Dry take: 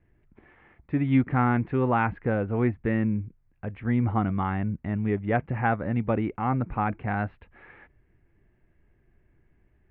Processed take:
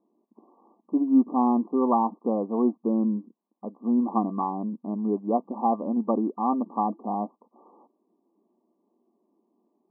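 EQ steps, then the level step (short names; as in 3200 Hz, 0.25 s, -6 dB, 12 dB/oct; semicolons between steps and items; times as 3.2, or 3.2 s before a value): brick-wall FIR band-pass 200–1200 Hz; bell 500 Hz -5 dB 1.2 oct; +5.0 dB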